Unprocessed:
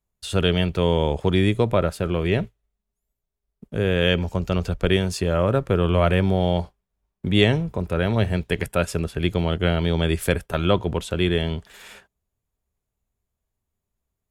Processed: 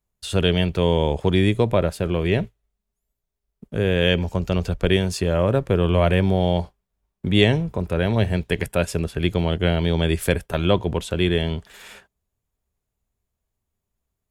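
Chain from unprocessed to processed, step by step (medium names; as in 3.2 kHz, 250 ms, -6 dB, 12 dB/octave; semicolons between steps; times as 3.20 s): dynamic bell 1.3 kHz, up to -7 dB, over -45 dBFS, Q 5.6; trim +1 dB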